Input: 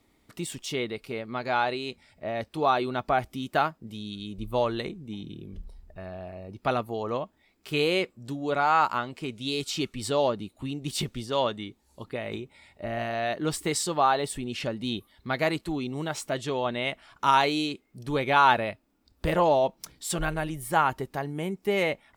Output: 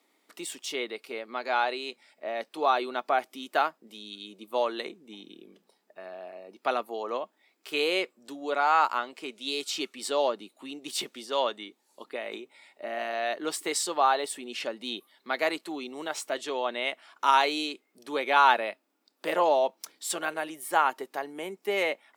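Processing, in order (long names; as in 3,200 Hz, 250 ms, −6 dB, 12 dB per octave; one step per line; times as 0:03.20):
Bessel high-pass filter 410 Hz, order 6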